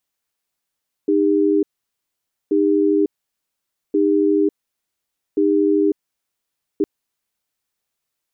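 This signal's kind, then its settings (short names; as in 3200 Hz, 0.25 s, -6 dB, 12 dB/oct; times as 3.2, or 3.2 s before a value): cadence 308 Hz, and 401 Hz, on 0.55 s, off 0.88 s, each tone -16 dBFS 5.76 s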